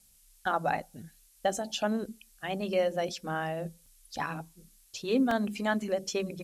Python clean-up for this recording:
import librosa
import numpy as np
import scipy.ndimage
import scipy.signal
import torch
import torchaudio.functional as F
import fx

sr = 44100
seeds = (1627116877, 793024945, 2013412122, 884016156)

y = fx.fix_interpolate(x, sr, at_s=(3.86, 5.31), length_ms=2.9)
y = fx.noise_reduce(y, sr, print_start_s=4.44, print_end_s=4.94, reduce_db=14.0)